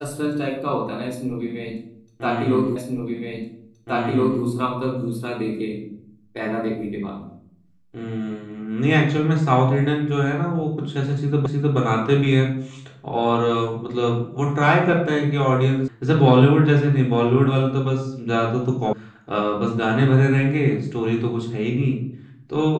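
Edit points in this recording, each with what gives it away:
0:02.76: the same again, the last 1.67 s
0:11.46: the same again, the last 0.31 s
0:15.88: cut off before it has died away
0:18.93: cut off before it has died away

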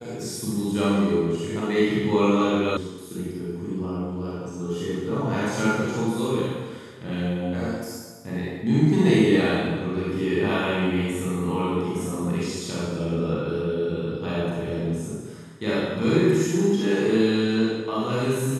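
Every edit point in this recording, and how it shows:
0:02.77: cut off before it has died away

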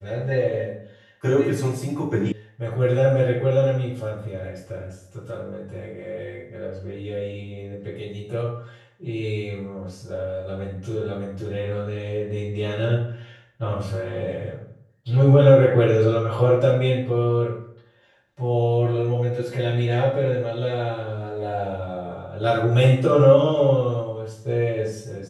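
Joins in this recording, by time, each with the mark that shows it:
0:02.32: cut off before it has died away

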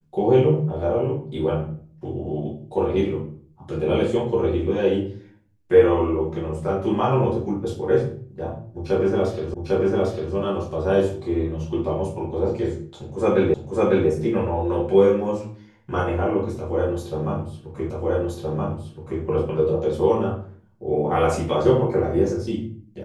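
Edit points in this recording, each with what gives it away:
0:09.54: the same again, the last 0.8 s
0:13.54: the same again, the last 0.55 s
0:17.90: the same again, the last 1.32 s

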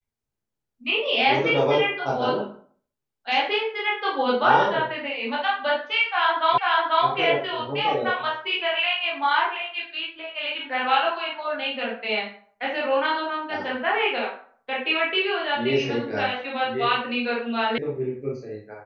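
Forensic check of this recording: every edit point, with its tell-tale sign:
0:06.58: the same again, the last 0.49 s
0:17.78: cut off before it has died away

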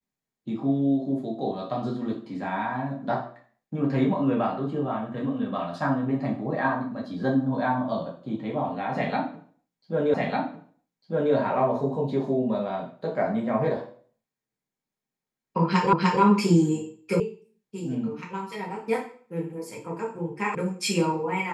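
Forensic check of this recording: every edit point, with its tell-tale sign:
0:10.14: the same again, the last 1.2 s
0:15.93: the same again, the last 0.3 s
0:17.20: cut off before it has died away
0:20.55: cut off before it has died away

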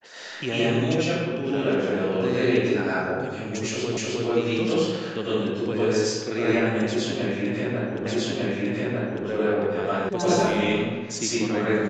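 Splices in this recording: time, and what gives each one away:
0:03.97: the same again, the last 0.31 s
0:08.06: the same again, the last 1.2 s
0:10.09: cut off before it has died away

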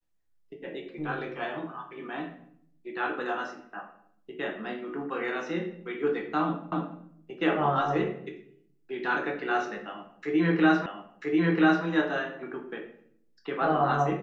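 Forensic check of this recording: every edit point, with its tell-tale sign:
0:06.72: the same again, the last 0.28 s
0:10.86: the same again, the last 0.99 s

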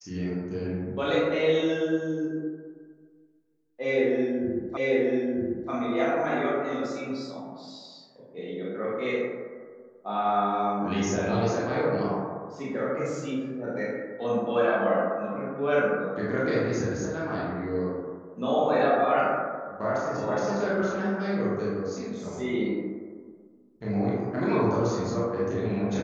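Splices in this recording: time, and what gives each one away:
0:04.77: the same again, the last 0.94 s

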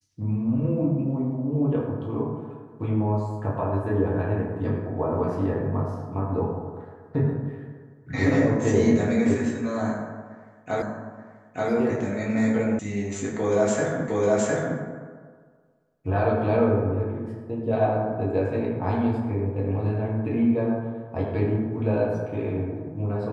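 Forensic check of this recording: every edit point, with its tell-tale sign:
0:10.82: the same again, the last 0.88 s
0:12.79: cut off before it has died away
0:14.08: the same again, the last 0.71 s

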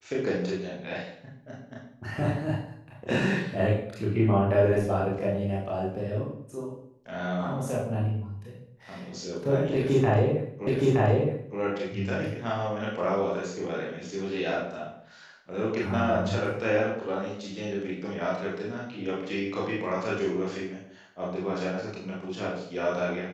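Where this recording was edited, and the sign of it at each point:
0:10.67: the same again, the last 0.92 s

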